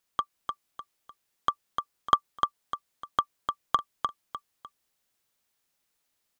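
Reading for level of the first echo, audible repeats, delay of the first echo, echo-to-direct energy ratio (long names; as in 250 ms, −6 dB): −5.0 dB, 3, 301 ms, −4.5 dB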